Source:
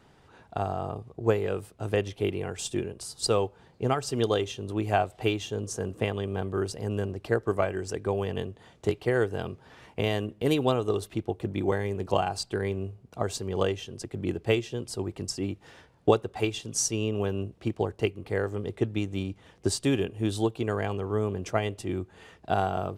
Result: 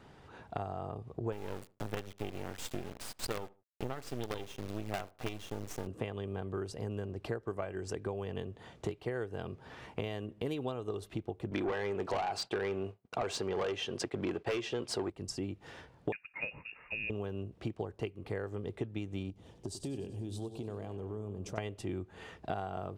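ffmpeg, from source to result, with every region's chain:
-filter_complex "[0:a]asettb=1/sr,asplit=3[s0][s1][s2];[s0]atrim=end=1.324[s3];[s1]atrim=start=1.32:end=5.87,asetpts=PTS-STARTPTS,afade=t=in:d=0.004:c=qsin,afade=t=out:st=4.546:d=0.004:c=qsin,acrusher=bits=4:dc=4:mix=0:aa=0.000001,asplit=2[s4][s5];[s5]adelay=75,lowpass=f=1400:p=1,volume=0.0708,asplit=2[s6][s7];[s7]adelay=75,lowpass=f=1400:p=1,volume=0.23[s8];[s4][s6][s8]amix=inputs=3:normalize=0,atrim=end_sample=200655[s9];[s2]atrim=start=5.866[s10];[s3][s9]acrossfade=d=0.004:c1=hsin:c2=qsin[s11];[s11][s10]acrossfade=d=0.004:c1=qsin:c2=hsin,asettb=1/sr,asplit=3[s12][s13][s14];[s12]atrim=end=11.514[s15];[s13]atrim=start=11.51:end=15.1,asetpts=PTS-STARTPTS,afade=t=in:d=0.004:c=qsin,afade=t=out:st=3.586:d=0.004:c=qsin,highshelf=f=8100:g=-7,asplit=2[s16][s17];[s17]highpass=f=720:p=1,volume=20,asoftclip=type=tanh:threshold=0.398[s18];[s16][s18]amix=inputs=2:normalize=0,lowpass=f=4700:p=1,volume=0.501,agate=range=0.0224:threshold=0.0316:ratio=3:release=100:detection=peak[s19];[s14]atrim=start=15.096[s20];[s15][s19]acrossfade=d=0.004:c1=hsin:c2=qsin[s21];[s21][s20]acrossfade=d=0.004:c1=qsin:c2=hsin,asettb=1/sr,asplit=3[s22][s23][s24];[s22]atrim=end=16.124[s25];[s23]atrim=start=16.12:end=17.1,asetpts=PTS-STARTPTS,afade=t=in:d=0.004:c=qsin,afade=t=out:st=0.976:d=0.004:c=qsin,highpass=f=590:p=1,lowpass=f=2500:t=q:w=0.5098,lowpass=f=2500:t=q:w=0.6013,lowpass=f=2500:t=q:w=0.9,lowpass=f=2500:t=q:w=2.563,afreqshift=-2900[s26];[s24]atrim=start=17.096[s27];[s25][s26]acrossfade=d=0.004:c1=hsin:c2=qsin[s28];[s28][s27]acrossfade=d=0.004:c1=qsin:c2=hsin,asettb=1/sr,asplit=3[s29][s30][s31];[s29]atrim=end=19.304[s32];[s30]atrim=start=19.3:end=21.58,asetpts=PTS-STARTPTS,afade=t=in:d=0.004:c=qsin,afade=t=out:st=2.276:d=0.004:c=qsin,equalizer=f=1700:t=o:w=1.7:g=-13.5,acompressor=threshold=0.01:ratio=3:attack=3.2:release=140:knee=1:detection=peak,aecho=1:1:95|190|285|380|475|570:0.237|0.135|0.077|0.0439|0.025|0.0143,atrim=end_sample=100548[s33];[s31]atrim=start=21.576[s34];[s32][s33]acrossfade=d=0.004:c1=hsin:c2=qsin[s35];[s35][s34]acrossfade=d=0.004:c1=qsin:c2=hsin,highshelf=f=5200:g=-6.5,acompressor=threshold=0.0141:ratio=5,volume=1.26"

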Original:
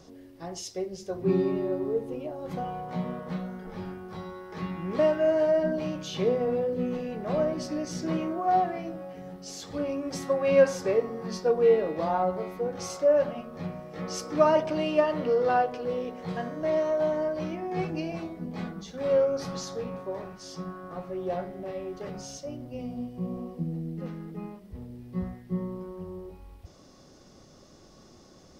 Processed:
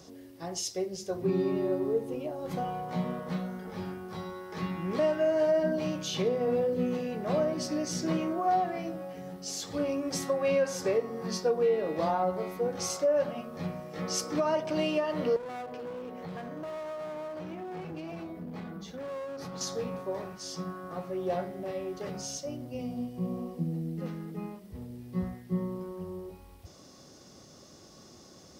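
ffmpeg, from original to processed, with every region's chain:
-filter_complex "[0:a]asettb=1/sr,asplit=3[s0][s1][s2];[s0]atrim=end=15.364[s3];[s1]atrim=start=15.36:end=19.61,asetpts=PTS-STARTPTS,afade=t=in:d=0.004:c=qsin,afade=t=out:st=4.246:d=0.004:c=qsin,equalizer=f=6800:w=0.57:g=-9,aeval=exprs='clip(val(0),-1,0.0224)':c=same,acompressor=threshold=0.0141:ratio=3:attack=3.2:release=140:knee=1:detection=peak[s4];[s2]atrim=start=19.606[s5];[s3][s4]acrossfade=d=0.004:c1=hsin:c2=qsin[s6];[s6][s5]acrossfade=d=0.004:c1=qsin:c2=hsin,highpass=69,highshelf=f=4600:g=7.5,alimiter=limit=0.112:level=0:latency=1:release=246"

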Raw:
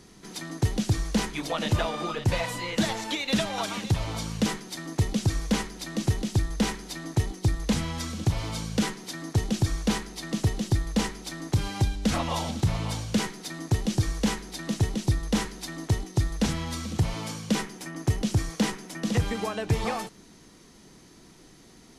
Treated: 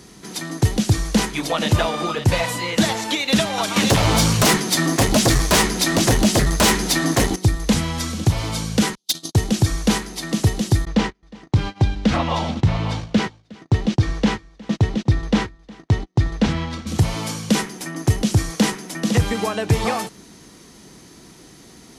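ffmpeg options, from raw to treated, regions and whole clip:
-filter_complex "[0:a]asettb=1/sr,asplit=3[s0][s1][s2];[s0]atrim=end=3.764[s3];[s1]atrim=start=3.76:end=7.36,asetpts=PTS-STARTPTS,afade=t=in:d=0.004:c=qsin,afade=t=out:st=3.596:d=0.004:c=qsin,aeval=exprs='0.188*sin(PI/2*3.55*val(0)/0.188)':c=same,flanger=delay=5.5:depth=8.4:regen=-45:speed=1.3:shape=triangular[s4];[s2]atrim=start=7.356[s5];[s3][s4]acrossfade=d=0.004:c1=hsin:c2=qsin[s6];[s6][s5]acrossfade=d=0.004:c1=qsin:c2=hsin,asettb=1/sr,asplit=3[s7][s8][s9];[s7]atrim=end=8.954[s10];[s8]atrim=start=8.95:end=9.35,asetpts=PTS-STARTPTS,afade=t=in:d=0.004:c=qsin,afade=t=out:st=0.396:d=0.004:c=qsin,agate=range=0.00398:threshold=0.0158:ratio=16:release=100:detection=peak,highshelf=f=2600:t=q:w=3:g=11,asoftclip=type=hard:threshold=0.0794[s11];[s9]atrim=start=9.346[s12];[s10][s11]acrossfade=d=0.004:c1=hsin:c2=qsin[s13];[s13][s12]acrossfade=d=0.004:c1=qsin:c2=hsin,asettb=1/sr,asplit=3[s14][s15][s16];[s14]atrim=end=10.854[s17];[s15]atrim=start=10.85:end=16.87,asetpts=PTS-STARTPTS,afade=t=in:d=0.004:c=qsin,afade=t=out:st=6.016:d=0.004:c=qsin,lowpass=3600,agate=range=0.02:threshold=0.02:ratio=16:release=100:detection=peak,aecho=1:1:361:0.075,atrim=end_sample=265482[s18];[s16]atrim=start=16.866[s19];[s17][s18]acrossfade=d=0.004:c1=hsin:c2=qsin[s20];[s20][s19]acrossfade=d=0.004:c1=qsin:c2=hsin,highpass=42,highshelf=f=8600:g=4,volume=2.37"

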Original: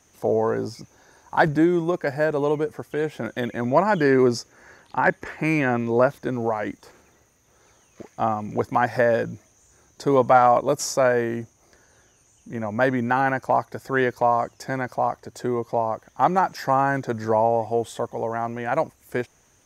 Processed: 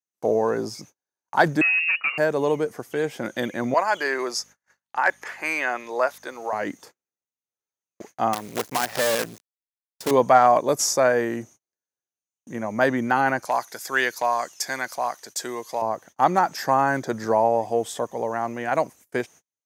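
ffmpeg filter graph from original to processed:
-filter_complex "[0:a]asettb=1/sr,asplit=3[s0][s1][s2];[s0]atrim=end=1.614[s3];[s1]atrim=start=1.61:end=2.18,asetpts=PTS-STARTPTS,afade=t=in:d=0.004:c=qsin,afade=t=out:st=0.566:d=0.004:c=qsin,asoftclip=type=hard:threshold=0.0944,lowpass=f=2500:t=q:w=0.5098,lowpass=f=2500:t=q:w=0.6013,lowpass=f=2500:t=q:w=0.9,lowpass=f=2500:t=q:w=2.563,afreqshift=-2900[s4];[s2]atrim=start=2.176[s5];[s3][s4]acrossfade=d=0.004:c1=hsin:c2=qsin[s6];[s6][s5]acrossfade=d=0.004:c1=qsin:c2=hsin,asettb=1/sr,asplit=3[s7][s8][s9];[s7]atrim=end=3.744[s10];[s8]atrim=start=3.74:end=6.53,asetpts=PTS-STARTPTS,afade=t=in:d=0.004:c=qsin,afade=t=out:st=2.786:d=0.004:c=qsin,highpass=700,aeval=exprs='val(0)+0.00158*(sin(2*PI*50*n/s)+sin(2*PI*2*50*n/s)/2+sin(2*PI*3*50*n/s)/3+sin(2*PI*4*50*n/s)/4+sin(2*PI*5*50*n/s)/5)':c=same[s11];[s9]atrim=start=6.526[s12];[s10][s11]acrossfade=d=0.004:c1=hsin:c2=qsin[s13];[s13][s12]acrossfade=d=0.004:c1=qsin:c2=hsin,asettb=1/sr,asplit=3[s14][s15][s16];[s14]atrim=end=8.334[s17];[s15]atrim=start=8.33:end=10.11,asetpts=PTS-STARTPTS,afade=t=in:d=0.004:c=qsin,afade=t=out:st=1.776:d=0.004:c=qsin,lowshelf=f=100:g=-5.5,acompressor=threshold=0.0794:ratio=2.5:attack=3.2:release=140:knee=1:detection=peak,acrusher=bits=5:dc=4:mix=0:aa=0.000001[s18];[s16]atrim=start=10.106[s19];[s17][s18]acrossfade=d=0.004:c1=hsin:c2=qsin[s20];[s20][s19]acrossfade=d=0.004:c1=qsin:c2=hsin,asettb=1/sr,asplit=3[s21][s22][s23];[s21]atrim=end=13.454[s24];[s22]atrim=start=13.45:end=15.82,asetpts=PTS-STARTPTS,afade=t=in:d=0.004:c=qsin,afade=t=out:st=2.366:d=0.004:c=qsin,highpass=f=180:p=1,tiltshelf=f=1200:g=-8.5[s25];[s23]atrim=start=15.816[s26];[s24][s25]acrossfade=d=0.004:c1=hsin:c2=qsin[s27];[s27][s26]acrossfade=d=0.004:c1=qsin:c2=hsin,agate=range=0.00794:threshold=0.00562:ratio=16:detection=peak,highpass=150,highshelf=f=3800:g=7"

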